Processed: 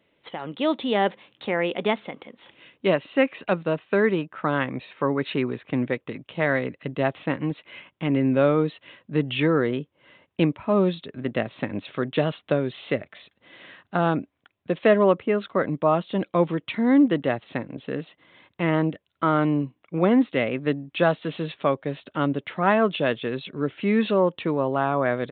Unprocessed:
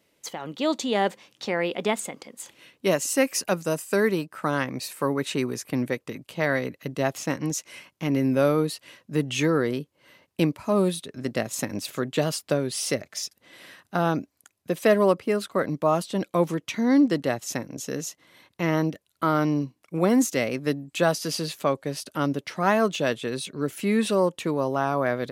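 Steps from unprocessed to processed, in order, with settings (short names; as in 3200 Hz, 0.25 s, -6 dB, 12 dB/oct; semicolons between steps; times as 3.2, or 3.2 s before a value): downsampling 8000 Hz; gain +1.5 dB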